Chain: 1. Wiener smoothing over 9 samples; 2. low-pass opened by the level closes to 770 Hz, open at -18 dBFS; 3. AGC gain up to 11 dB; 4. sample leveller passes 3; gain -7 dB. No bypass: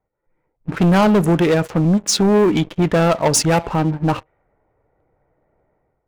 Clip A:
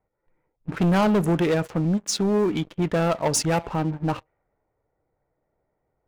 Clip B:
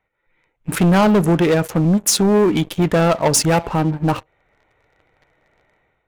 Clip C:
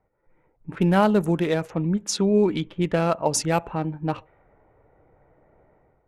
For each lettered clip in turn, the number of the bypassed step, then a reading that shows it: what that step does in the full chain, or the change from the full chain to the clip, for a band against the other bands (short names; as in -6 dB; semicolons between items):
3, loudness change -7.0 LU; 2, 8 kHz band +1.5 dB; 4, crest factor change +6.5 dB